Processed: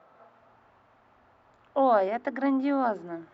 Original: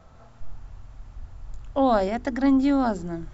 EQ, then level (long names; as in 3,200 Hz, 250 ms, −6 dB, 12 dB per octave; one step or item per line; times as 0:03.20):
band-pass filter 380–2,300 Hz
0.0 dB